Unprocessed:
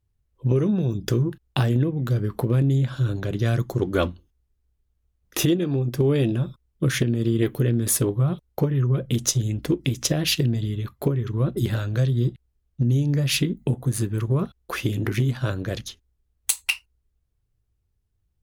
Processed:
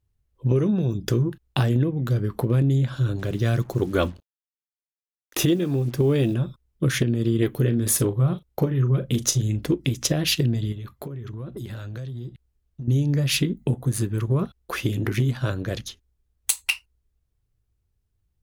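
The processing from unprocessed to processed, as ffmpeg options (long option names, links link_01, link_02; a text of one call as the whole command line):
ffmpeg -i in.wav -filter_complex "[0:a]asettb=1/sr,asplit=3[link_01][link_02][link_03];[link_01]atrim=end=3.194[link_04];[link_02]atrim=start=3.19:end=6.34,asetpts=PTS-STARTPTS,afade=type=in:duration=0.004:curve=qsin,afade=type=out:start_time=3.146:duration=0.004:curve=qsin,acrusher=bits=7:mix=0:aa=0.5[link_05];[link_03]atrim=start=6.336[link_06];[link_04][link_05]acrossfade=duration=0.004:curve1=hsin:curve2=qsin[link_07];[link_07][link_06]acrossfade=duration=0.004:curve1=qsin:curve2=hsin,asettb=1/sr,asplit=3[link_08][link_09][link_10];[link_08]atrim=end=7.554[link_11];[link_09]atrim=start=7.55:end=9.68,asetpts=PTS-STARTPTS,afade=type=in:duration=0.004:curve=qsin,afade=type=out:start_time=2.126:duration=0.004:curve=qsin,asplit=2[link_12][link_13];[link_13]adelay=38,volume=-12dB[link_14];[link_12][link_14]amix=inputs=2:normalize=0,atrim=end_sample=93933[link_15];[link_10]atrim=start=9.676[link_16];[link_11][link_15]acrossfade=duration=0.004:curve1=hsin:curve2=qsin[link_17];[link_17][link_16]acrossfade=duration=0.004:curve1=qsin:curve2=hsin,asettb=1/sr,asplit=3[link_18][link_19][link_20];[link_18]atrim=end=10.724[link_21];[link_19]atrim=start=10.72:end=12.88,asetpts=PTS-STARTPTS,afade=type=in:duration=0.004:curve=qsin,afade=type=out:start_time=2.156:duration=0.004:curve=qsin,acompressor=threshold=-31dB:ratio=6:attack=3.2:release=140:knee=1:detection=peak[link_22];[link_20]atrim=start=12.876[link_23];[link_21][link_22]acrossfade=duration=0.004:curve1=hsin:curve2=qsin[link_24];[link_24][link_23]acrossfade=duration=0.004:curve1=qsin:curve2=hsin" out.wav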